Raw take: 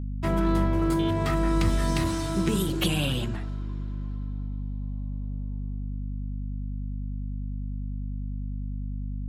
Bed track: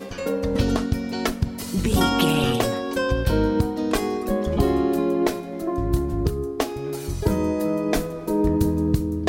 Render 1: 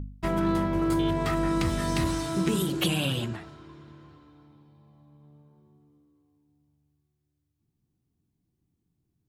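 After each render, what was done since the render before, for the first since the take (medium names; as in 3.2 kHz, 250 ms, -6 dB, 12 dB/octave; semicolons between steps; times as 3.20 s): de-hum 50 Hz, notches 5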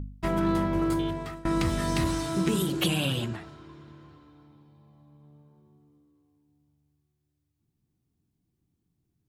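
0.82–1.45 s: fade out, to -23.5 dB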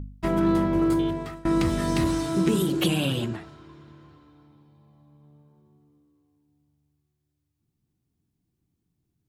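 dynamic bell 320 Hz, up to +5 dB, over -39 dBFS, Q 0.74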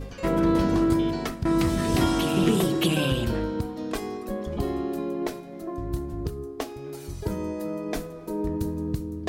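add bed track -8 dB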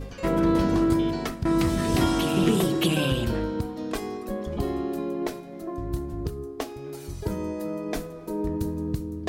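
no audible change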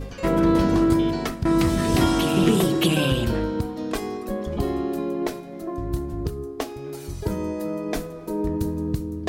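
trim +3 dB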